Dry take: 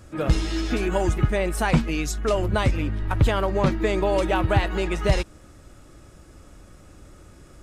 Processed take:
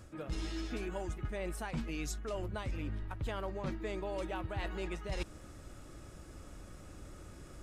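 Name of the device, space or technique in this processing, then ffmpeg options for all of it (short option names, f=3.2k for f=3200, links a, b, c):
compression on the reversed sound: -af "areverse,acompressor=threshold=-32dB:ratio=10,areverse,volume=-3dB"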